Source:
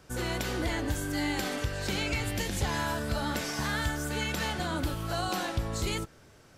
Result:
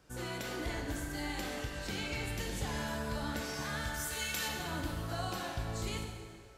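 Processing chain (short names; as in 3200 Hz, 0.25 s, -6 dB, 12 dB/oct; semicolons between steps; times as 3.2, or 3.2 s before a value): 3.94–4.48 tilt +3 dB/oct; plate-style reverb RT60 2.1 s, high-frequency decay 0.75×, DRR 2 dB; gain -8.5 dB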